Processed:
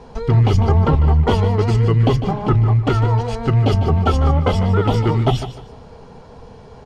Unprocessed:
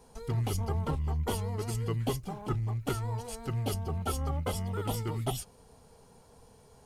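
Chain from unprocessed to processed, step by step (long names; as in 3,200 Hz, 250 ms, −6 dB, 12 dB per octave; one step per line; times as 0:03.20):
high-frequency loss of the air 190 metres
repeating echo 150 ms, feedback 27%, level −13 dB
boost into a limiter +22.5 dB
level −4.5 dB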